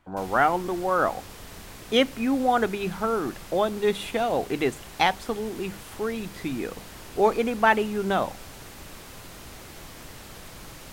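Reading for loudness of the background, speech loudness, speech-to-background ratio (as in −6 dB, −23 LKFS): −42.5 LKFS, −25.5 LKFS, 17.0 dB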